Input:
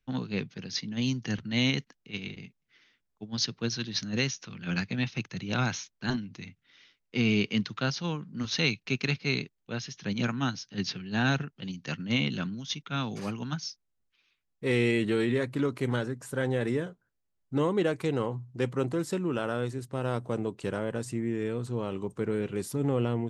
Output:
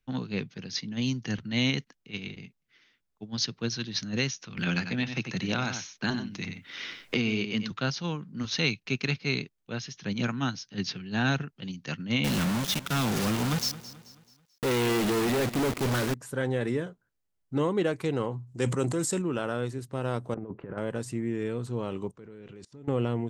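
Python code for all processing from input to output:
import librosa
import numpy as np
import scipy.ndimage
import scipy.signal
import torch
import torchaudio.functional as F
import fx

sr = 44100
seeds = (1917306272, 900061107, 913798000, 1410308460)

y = fx.chain(x, sr, fx.low_shelf(hz=86.0, db=-10.0),
    fx.echo_single(ms=92, db=-9.5),
    fx.band_squash(depth_pct=100), at=(4.57, 7.72))
y = fx.chain(y, sr, fx.quant_companded(bits=2),
    fx.echo_feedback(ms=217, feedback_pct=42, wet_db=-16), at=(12.24, 16.14))
y = fx.chain(y, sr, fx.peak_eq(hz=7800.0, db=13.5, octaves=0.77),
    fx.sustainer(db_per_s=51.0), at=(18.47, 19.22))
y = fx.chain(y, sr, fx.lowpass(hz=1800.0, slope=24),
    fx.over_compress(threshold_db=-36.0, ratio=-0.5), at=(20.34, 20.78))
y = fx.chain(y, sr, fx.lowpass(hz=6800.0, slope=24),
    fx.level_steps(step_db=23), at=(22.11, 22.88))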